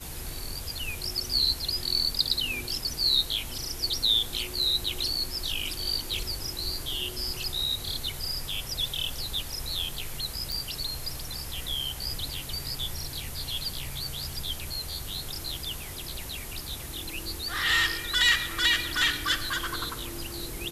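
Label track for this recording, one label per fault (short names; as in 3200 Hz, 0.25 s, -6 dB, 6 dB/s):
10.520000	10.520000	pop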